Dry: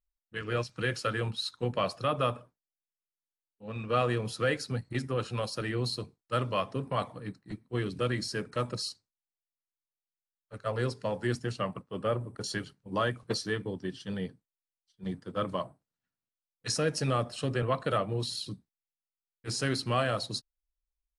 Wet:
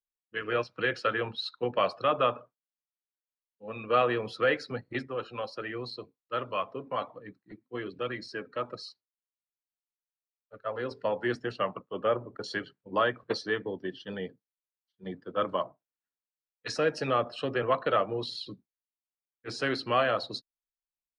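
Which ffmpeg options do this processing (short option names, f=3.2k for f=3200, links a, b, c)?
-filter_complex "[0:a]asettb=1/sr,asplit=3[a][b][c];[a]atrim=end=5.034[d];[b]atrim=start=5.03:end=10.91,asetpts=PTS-STARTPTS,afade=t=in:d=0.004:c=qsin,afade=t=out:st=5.876:d=0.004:c=qsin,flanger=delay=0.8:depth=3.1:regen=73:speed=1.3:shape=sinusoidal[e];[c]atrim=start=10.906[f];[d][e]acrossfade=d=0.004:c1=hsin:c2=qsin[g];[g][f]acrossfade=d=0.004:c1=qsin:c2=hsin,afftdn=nr=12:nf=-52,acrossover=split=280 4200:gain=0.2 1 0.0708[h][i][j];[h][i][j]amix=inputs=3:normalize=0,volume=4dB"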